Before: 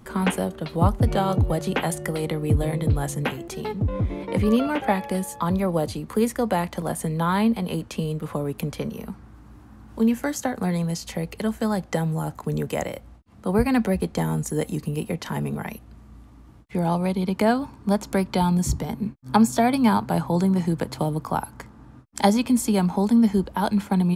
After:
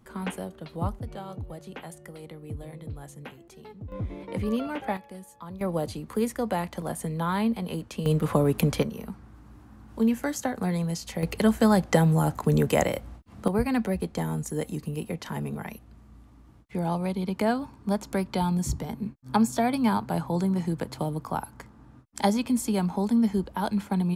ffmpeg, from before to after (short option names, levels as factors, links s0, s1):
-af "asetnsamples=n=441:p=0,asendcmd='0.99 volume volume -16.5dB;3.92 volume volume -8dB;4.97 volume volume -17dB;5.61 volume volume -5dB;8.06 volume volume 5dB;8.83 volume volume -3dB;11.23 volume volume 4dB;13.48 volume volume -5dB',volume=0.316"